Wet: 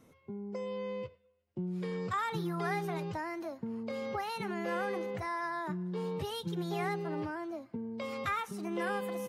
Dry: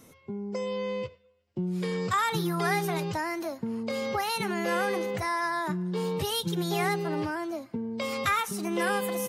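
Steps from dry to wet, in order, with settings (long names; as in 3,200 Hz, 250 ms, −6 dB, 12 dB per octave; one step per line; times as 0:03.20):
high-shelf EQ 3,700 Hz −11 dB
level −6 dB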